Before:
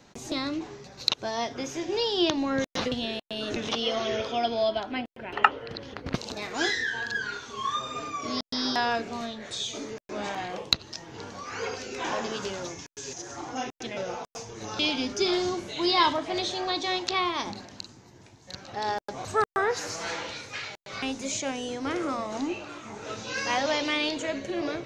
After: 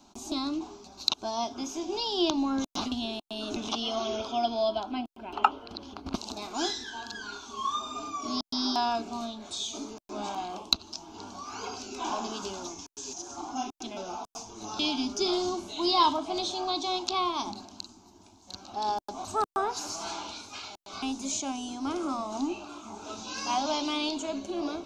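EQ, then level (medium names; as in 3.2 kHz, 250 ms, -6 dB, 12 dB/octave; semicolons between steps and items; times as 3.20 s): peaking EQ 340 Hz -2 dB 0.3 oct; static phaser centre 500 Hz, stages 6; +1.0 dB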